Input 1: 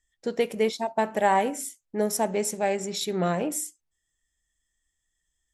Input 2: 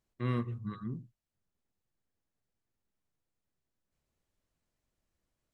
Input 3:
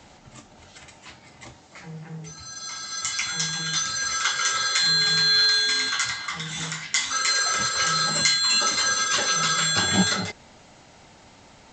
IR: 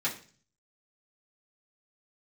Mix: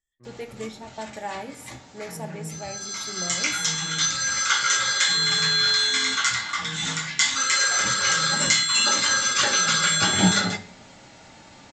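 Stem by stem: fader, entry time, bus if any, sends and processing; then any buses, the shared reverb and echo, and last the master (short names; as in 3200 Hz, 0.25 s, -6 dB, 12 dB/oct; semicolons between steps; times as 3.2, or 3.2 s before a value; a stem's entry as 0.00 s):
-14.0 dB, 0.00 s, send -7 dB, dry
-17.5 dB, 0.00 s, no send, LPF 1000 Hz 12 dB/oct
-2.0 dB, 0.25 s, send -5 dB, dry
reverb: on, RT60 0.40 s, pre-delay 3 ms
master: dry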